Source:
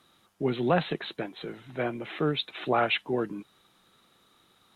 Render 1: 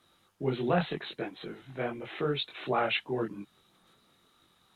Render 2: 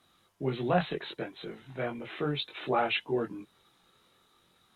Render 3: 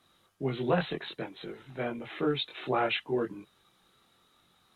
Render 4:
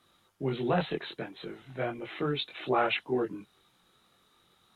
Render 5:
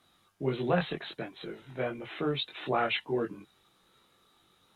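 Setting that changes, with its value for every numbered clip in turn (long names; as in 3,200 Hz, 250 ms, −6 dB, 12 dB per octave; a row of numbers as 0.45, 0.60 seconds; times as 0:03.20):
multi-voice chorus, speed: 2.9, 0.34, 0.54, 1.3, 0.22 Hertz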